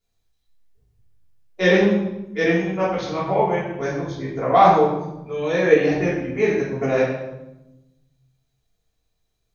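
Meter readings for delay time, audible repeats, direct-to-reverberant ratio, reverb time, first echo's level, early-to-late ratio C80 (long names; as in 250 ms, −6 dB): no echo audible, no echo audible, −9.5 dB, 0.95 s, no echo audible, 5.0 dB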